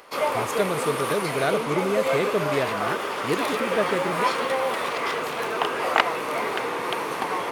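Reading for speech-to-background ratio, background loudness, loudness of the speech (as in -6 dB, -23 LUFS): -2.5 dB, -25.5 LUFS, -28.0 LUFS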